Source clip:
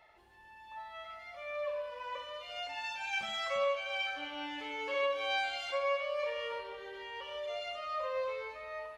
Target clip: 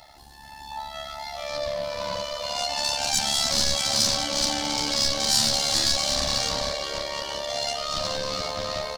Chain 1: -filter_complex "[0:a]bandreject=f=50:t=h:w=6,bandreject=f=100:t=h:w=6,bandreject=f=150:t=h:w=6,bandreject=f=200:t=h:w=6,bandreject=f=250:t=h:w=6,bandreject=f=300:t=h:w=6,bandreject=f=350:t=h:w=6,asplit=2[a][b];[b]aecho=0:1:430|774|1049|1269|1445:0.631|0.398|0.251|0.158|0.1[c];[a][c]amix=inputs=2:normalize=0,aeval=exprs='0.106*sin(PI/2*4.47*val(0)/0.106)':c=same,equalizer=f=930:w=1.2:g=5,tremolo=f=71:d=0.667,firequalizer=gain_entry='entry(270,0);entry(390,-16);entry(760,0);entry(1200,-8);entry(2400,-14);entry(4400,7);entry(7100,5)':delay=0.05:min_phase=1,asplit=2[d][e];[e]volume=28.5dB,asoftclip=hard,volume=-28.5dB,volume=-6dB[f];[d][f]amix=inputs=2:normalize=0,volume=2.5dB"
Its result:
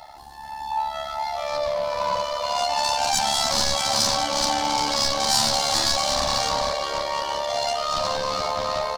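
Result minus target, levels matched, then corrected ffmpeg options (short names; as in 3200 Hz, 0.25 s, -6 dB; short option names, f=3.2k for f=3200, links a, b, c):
1000 Hz band +7.5 dB
-filter_complex "[0:a]bandreject=f=50:t=h:w=6,bandreject=f=100:t=h:w=6,bandreject=f=150:t=h:w=6,bandreject=f=200:t=h:w=6,bandreject=f=250:t=h:w=6,bandreject=f=300:t=h:w=6,bandreject=f=350:t=h:w=6,asplit=2[a][b];[b]aecho=0:1:430|774|1049|1269|1445:0.631|0.398|0.251|0.158|0.1[c];[a][c]amix=inputs=2:normalize=0,aeval=exprs='0.106*sin(PI/2*4.47*val(0)/0.106)':c=same,equalizer=f=930:w=1.2:g=-6,tremolo=f=71:d=0.667,firequalizer=gain_entry='entry(270,0);entry(390,-16);entry(760,0);entry(1200,-8);entry(2400,-14);entry(4400,7);entry(7100,5)':delay=0.05:min_phase=1,asplit=2[d][e];[e]volume=28.5dB,asoftclip=hard,volume=-28.5dB,volume=-6dB[f];[d][f]amix=inputs=2:normalize=0,volume=2.5dB"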